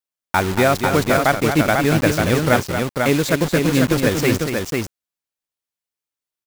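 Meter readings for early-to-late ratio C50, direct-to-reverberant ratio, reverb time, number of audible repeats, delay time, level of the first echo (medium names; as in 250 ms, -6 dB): no reverb, no reverb, no reverb, 2, 230 ms, -8.0 dB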